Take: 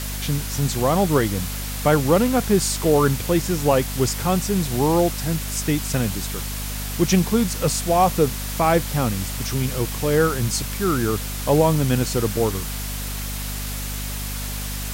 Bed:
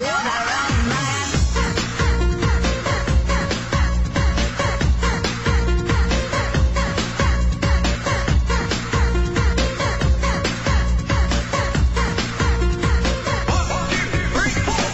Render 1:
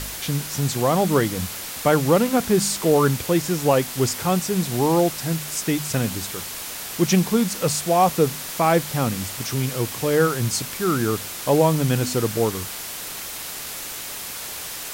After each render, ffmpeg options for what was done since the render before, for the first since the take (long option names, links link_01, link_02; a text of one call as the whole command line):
ffmpeg -i in.wav -af "bandreject=frequency=50:width_type=h:width=4,bandreject=frequency=100:width_type=h:width=4,bandreject=frequency=150:width_type=h:width=4,bandreject=frequency=200:width_type=h:width=4,bandreject=frequency=250:width_type=h:width=4" out.wav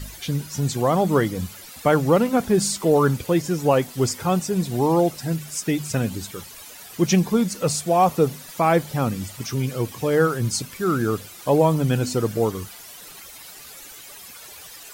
ffmpeg -i in.wav -af "afftdn=noise_reduction=13:noise_floor=-33" out.wav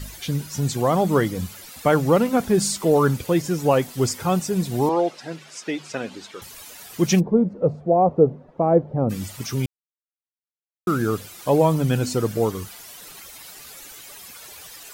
ffmpeg -i in.wav -filter_complex "[0:a]asettb=1/sr,asplit=3[link_01][link_02][link_03];[link_01]atrim=end=4.894[link_04];[link_02]atrim=start=4.89:end=6.42,asetpts=PTS-STARTPTS,afade=type=in:duration=0.004:curve=qsin,afade=type=out:start_time=1.526:duration=0.004:curve=qsin,highpass=360,lowpass=4400[link_05];[link_03]atrim=start=6.416[link_06];[link_04][link_05]acrossfade=duration=0.004:curve1=hsin:curve2=qsin[link_07];[link_07][link_06]acrossfade=duration=0.004:curve1=qsin:curve2=hsin,asplit=3[link_08][link_09][link_10];[link_08]afade=type=out:start_time=7.19:duration=0.02[link_11];[link_09]lowpass=frequency=560:width_type=q:width=1.5,afade=type=in:start_time=7.19:duration=0.02,afade=type=out:start_time=9.09:duration=0.02[link_12];[link_10]afade=type=in:start_time=9.09:duration=0.02[link_13];[link_11][link_12][link_13]amix=inputs=3:normalize=0,asplit=3[link_14][link_15][link_16];[link_14]atrim=end=9.66,asetpts=PTS-STARTPTS,afade=type=out:start_time=9.656:duration=0.004:curve=hsin[link_17];[link_15]atrim=start=9.66:end=10.87,asetpts=PTS-STARTPTS,volume=0[link_18];[link_16]atrim=start=10.87,asetpts=PTS-STARTPTS,afade=type=in:duration=0.004:curve=hsin[link_19];[link_17][link_18][link_19]concat=n=3:v=0:a=1" out.wav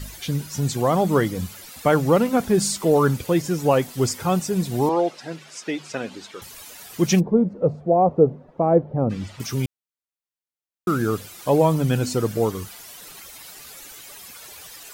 ffmpeg -i in.wav -filter_complex "[0:a]asettb=1/sr,asplit=3[link_01][link_02][link_03];[link_01]atrim=end=8.784[link_04];[link_02]atrim=start=8.78:end=9.4,asetpts=PTS-STARTPTS,afade=type=in:duration=0.004:curve=qsin,afade=type=out:start_time=0.616:duration=0.004:curve=qsin,lowpass=4000[link_05];[link_03]atrim=start=9.396[link_06];[link_04][link_05]acrossfade=duration=0.004:curve1=hsin:curve2=qsin[link_07];[link_07][link_06]acrossfade=duration=0.004:curve1=qsin:curve2=hsin" out.wav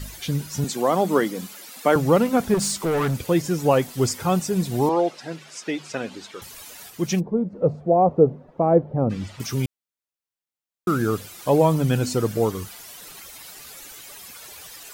ffmpeg -i in.wav -filter_complex "[0:a]asettb=1/sr,asplit=3[link_01][link_02][link_03];[link_01]atrim=end=0.644[link_04];[link_02]atrim=start=0.64:end=1.96,asetpts=PTS-STARTPTS,afade=type=in:duration=0.004:curve=qsin,afade=type=out:start_time=1.316:duration=0.004:curve=qsin,highpass=frequency=200:width=0.5412,highpass=frequency=200:width=1.3066[link_05];[link_03]atrim=start=1.956[link_06];[link_04][link_05]acrossfade=duration=0.004:curve1=hsin:curve2=qsin[link_07];[link_07][link_06]acrossfade=duration=0.004:curve1=qsin:curve2=hsin,asettb=1/sr,asplit=3[link_08][link_09][link_10];[link_08]atrim=end=2.544[link_11];[link_09]atrim=start=2.54:end=3.27,asetpts=PTS-STARTPTS,afade=type=in:duration=0.004:curve=qsin,afade=type=out:start_time=0.726:duration=0.004:curve=qsin,asoftclip=type=hard:threshold=-19.5dB[link_12];[link_10]atrim=start=3.266[link_13];[link_11][link_12]acrossfade=duration=0.004:curve1=hsin:curve2=qsin[link_14];[link_14][link_13]acrossfade=duration=0.004:curve1=qsin:curve2=hsin,asplit=3[link_15][link_16][link_17];[link_15]atrim=end=6.902[link_18];[link_16]atrim=start=6.898:end=7.532,asetpts=PTS-STARTPTS,volume=-5dB[link_19];[link_17]atrim=start=7.528[link_20];[link_18][link_19]acrossfade=duration=0.004:curve1=hsin:curve2=hsin[link_21];[link_21][link_20]acrossfade=duration=0.004:curve1=hsin:curve2=hsin" out.wav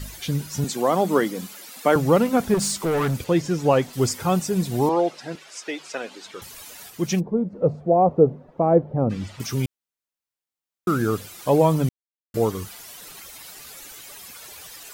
ffmpeg -i in.wav -filter_complex "[0:a]asettb=1/sr,asplit=3[link_01][link_02][link_03];[link_01]atrim=end=3.244[link_04];[link_02]atrim=start=3.24:end=3.93,asetpts=PTS-STARTPTS,afade=type=in:duration=0.004:curve=qsin,afade=type=out:start_time=0.686:duration=0.004:curve=qsin,acrossover=split=7600[link_05][link_06];[link_06]acompressor=threshold=-53dB:ratio=4:attack=1:release=60[link_07];[link_05][link_07]amix=inputs=2:normalize=0[link_08];[link_03]atrim=start=3.926[link_09];[link_04][link_08]acrossfade=duration=0.004:curve1=hsin:curve2=qsin[link_10];[link_10][link_09]acrossfade=duration=0.004:curve1=qsin:curve2=hsin,asettb=1/sr,asplit=3[link_11][link_12][link_13];[link_11]atrim=end=5.354[link_14];[link_12]atrim=start=5.35:end=6.26,asetpts=PTS-STARTPTS,afade=type=in:duration=0.004:curve=qsin,afade=type=out:start_time=0.906:duration=0.004:curve=qsin,highpass=390[link_15];[link_13]atrim=start=6.256[link_16];[link_14][link_15]acrossfade=duration=0.004:curve1=hsin:curve2=qsin[link_17];[link_17][link_16]acrossfade=duration=0.004:curve1=qsin:curve2=hsin,asplit=3[link_18][link_19][link_20];[link_18]atrim=end=11.89,asetpts=PTS-STARTPTS,afade=type=out:start_time=11.886:duration=0.004:curve=hsin[link_21];[link_19]atrim=start=11.89:end=12.34,asetpts=PTS-STARTPTS,volume=0[link_22];[link_20]atrim=start=12.34,asetpts=PTS-STARTPTS,afade=type=in:duration=0.004:curve=hsin[link_23];[link_21][link_22][link_23]concat=n=3:v=0:a=1" out.wav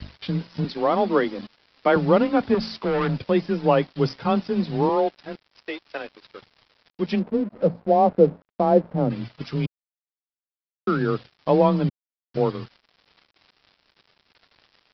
ffmpeg -i in.wav -af "afreqshift=22,aresample=11025,aeval=exprs='sgn(val(0))*max(abs(val(0))-0.00841,0)':channel_layout=same,aresample=44100" out.wav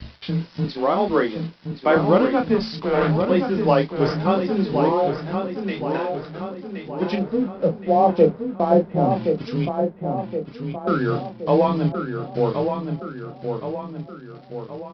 ffmpeg -i in.wav -filter_complex "[0:a]asplit=2[link_01][link_02];[link_02]adelay=31,volume=-6dB[link_03];[link_01][link_03]amix=inputs=2:normalize=0,asplit=2[link_04][link_05];[link_05]adelay=1071,lowpass=frequency=3400:poles=1,volume=-6dB,asplit=2[link_06][link_07];[link_07]adelay=1071,lowpass=frequency=3400:poles=1,volume=0.52,asplit=2[link_08][link_09];[link_09]adelay=1071,lowpass=frequency=3400:poles=1,volume=0.52,asplit=2[link_10][link_11];[link_11]adelay=1071,lowpass=frequency=3400:poles=1,volume=0.52,asplit=2[link_12][link_13];[link_13]adelay=1071,lowpass=frequency=3400:poles=1,volume=0.52,asplit=2[link_14][link_15];[link_15]adelay=1071,lowpass=frequency=3400:poles=1,volume=0.52[link_16];[link_06][link_08][link_10][link_12][link_14][link_16]amix=inputs=6:normalize=0[link_17];[link_04][link_17]amix=inputs=2:normalize=0" out.wav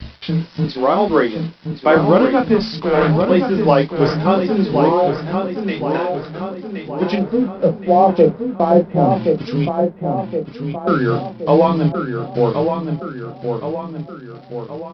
ffmpeg -i in.wav -af "volume=5dB,alimiter=limit=-1dB:level=0:latency=1" out.wav